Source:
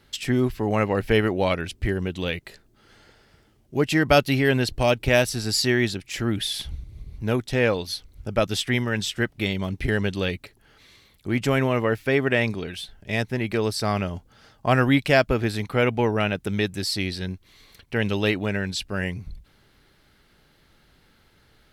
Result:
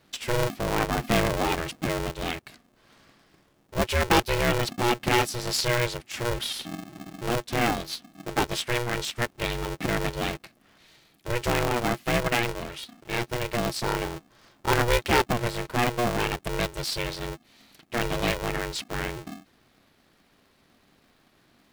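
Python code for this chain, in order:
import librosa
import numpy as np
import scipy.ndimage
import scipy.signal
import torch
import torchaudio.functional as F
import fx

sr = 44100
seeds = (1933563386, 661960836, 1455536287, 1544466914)

y = fx.transient(x, sr, attack_db=-1, sustain_db=5, at=(1.1, 2.11))
y = y * np.sign(np.sin(2.0 * np.pi * 240.0 * np.arange(len(y)) / sr))
y = y * 10.0 ** (-3.5 / 20.0)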